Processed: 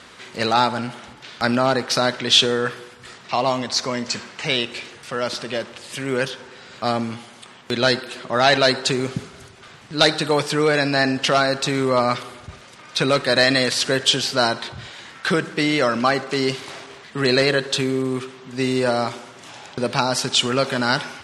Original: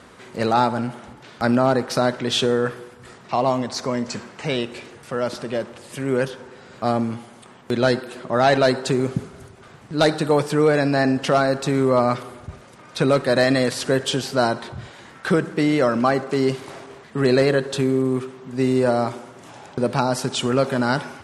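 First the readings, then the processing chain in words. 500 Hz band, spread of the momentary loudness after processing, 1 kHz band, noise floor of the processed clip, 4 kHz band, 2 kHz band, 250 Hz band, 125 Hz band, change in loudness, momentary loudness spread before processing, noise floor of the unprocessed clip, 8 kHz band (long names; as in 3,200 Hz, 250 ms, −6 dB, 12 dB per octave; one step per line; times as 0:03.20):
−1.5 dB, 16 LU, +0.5 dB, −45 dBFS, +8.5 dB, +4.5 dB, −2.5 dB, −3.0 dB, +1.0 dB, 15 LU, −46 dBFS, +5.5 dB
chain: parametric band 3,800 Hz +12 dB 2.8 octaves
level −3 dB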